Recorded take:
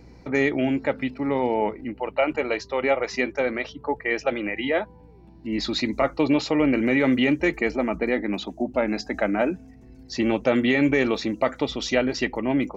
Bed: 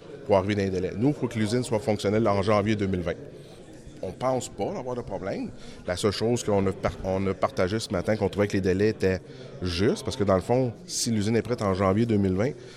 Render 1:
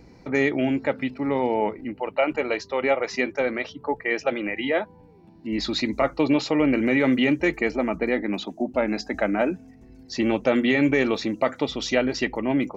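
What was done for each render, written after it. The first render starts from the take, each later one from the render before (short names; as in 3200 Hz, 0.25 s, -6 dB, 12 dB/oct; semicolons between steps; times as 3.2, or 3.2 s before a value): de-hum 60 Hz, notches 2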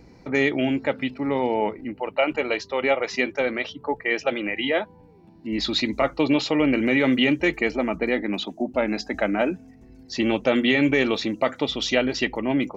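dynamic EQ 3200 Hz, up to +7 dB, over -44 dBFS, Q 2.1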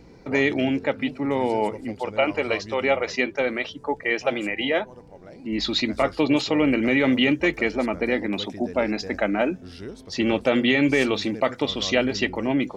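add bed -14 dB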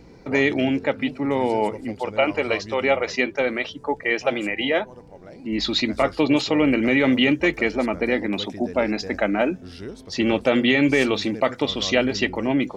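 gain +1.5 dB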